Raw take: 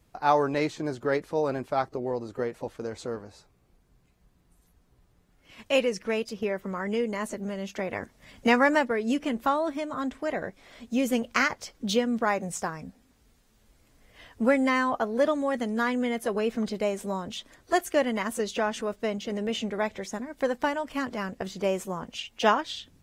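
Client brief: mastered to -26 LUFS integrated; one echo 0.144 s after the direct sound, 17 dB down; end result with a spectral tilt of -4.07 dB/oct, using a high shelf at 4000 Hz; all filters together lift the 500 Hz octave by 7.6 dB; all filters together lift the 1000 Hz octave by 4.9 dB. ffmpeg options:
-af "equalizer=f=500:t=o:g=8,equalizer=f=1k:t=o:g=4,highshelf=f=4k:g=-9,aecho=1:1:144:0.141,volume=-3dB"

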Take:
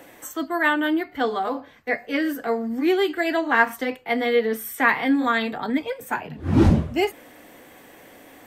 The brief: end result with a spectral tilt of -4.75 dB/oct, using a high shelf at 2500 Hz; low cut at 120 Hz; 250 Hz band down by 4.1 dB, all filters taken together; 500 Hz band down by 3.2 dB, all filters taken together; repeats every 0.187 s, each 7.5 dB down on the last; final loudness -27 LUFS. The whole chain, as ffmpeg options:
-af "highpass=120,equalizer=f=250:t=o:g=-4,equalizer=f=500:t=o:g=-3,highshelf=f=2.5k:g=4,aecho=1:1:187|374|561|748|935:0.422|0.177|0.0744|0.0312|0.0131,volume=-3.5dB"

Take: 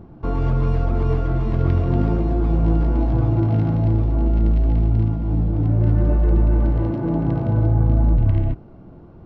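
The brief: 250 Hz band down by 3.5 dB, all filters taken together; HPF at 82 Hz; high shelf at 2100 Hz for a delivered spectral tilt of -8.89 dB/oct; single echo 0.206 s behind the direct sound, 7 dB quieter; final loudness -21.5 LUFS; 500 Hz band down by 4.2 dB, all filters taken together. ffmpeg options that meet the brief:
-af "highpass=82,equalizer=f=250:t=o:g=-3.5,equalizer=f=500:t=o:g=-5,highshelf=f=2.1k:g=5,aecho=1:1:206:0.447,volume=2dB"

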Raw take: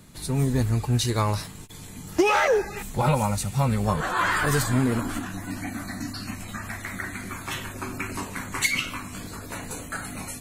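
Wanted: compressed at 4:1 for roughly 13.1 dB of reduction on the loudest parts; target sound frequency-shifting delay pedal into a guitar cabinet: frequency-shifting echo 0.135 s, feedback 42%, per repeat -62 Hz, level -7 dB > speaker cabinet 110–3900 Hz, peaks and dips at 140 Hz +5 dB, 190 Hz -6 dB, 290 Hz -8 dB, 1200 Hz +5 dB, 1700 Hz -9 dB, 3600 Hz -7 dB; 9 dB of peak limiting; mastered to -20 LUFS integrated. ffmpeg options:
-filter_complex "[0:a]acompressor=threshold=-33dB:ratio=4,alimiter=level_in=5.5dB:limit=-24dB:level=0:latency=1,volume=-5.5dB,asplit=6[a][b][c][d][e][f];[b]adelay=135,afreqshift=-62,volume=-7dB[g];[c]adelay=270,afreqshift=-124,volume=-14.5dB[h];[d]adelay=405,afreqshift=-186,volume=-22.1dB[i];[e]adelay=540,afreqshift=-248,volume=-29.6dB[j];[f]adelay=675,afreqshift=-310,volume=-37.1dB[k];[a][g][h][i][j][k]amix=inputs=6:normalize=0,highpass=110,equalizer=f=140:t=q:w=4:g=5,equalizer=f=190:t=q:w=4:g=-6,equalizer=f=290:t=q:w=4:g=-8,equalizer=f=1.2k:t=q:w=4:g=5,equalizer=f=1.7k:t=q:w=4:g=-9,equalizer=f=3.6k:t=q:w=4:g=-7,lowpass=f=3.9k:w=0.5412,lowpass=f=3.9k:w=1.3066,volume=20.5dB"

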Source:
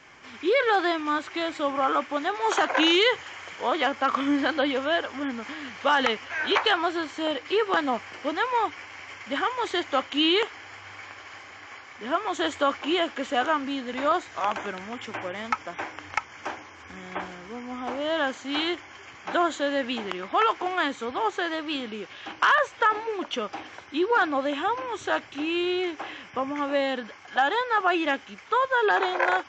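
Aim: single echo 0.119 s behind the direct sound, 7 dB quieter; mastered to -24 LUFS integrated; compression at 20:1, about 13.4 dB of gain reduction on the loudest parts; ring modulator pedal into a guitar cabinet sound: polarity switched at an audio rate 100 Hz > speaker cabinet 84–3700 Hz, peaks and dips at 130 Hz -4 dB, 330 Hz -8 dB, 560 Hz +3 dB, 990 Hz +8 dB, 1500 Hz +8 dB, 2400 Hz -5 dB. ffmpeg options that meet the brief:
-af "acompressor=threshold=-30dB:ratio=20,aecho=1:1:119:0.447,aeval=exprs='val(0)*sgn(sin(2*PI*100*n/s))':c=same,highpass=84,equalizer=f=130:t=q:w=4:g=-4,equalizer=f=330:t=q:w=4:g=-8,equalizer=f=560:t=q:w=4:g=3,equalizer=f=990:t=q:w=4:g=8,equalizer=f=1.5k:t=q:w=4:g=8,equalizer=f=2.4k:t=q:w=4:g=-5,lowpass=f=3.7k:w=0.5412,lowpass=f=3.7k:w=1.3066,volume=8dB"

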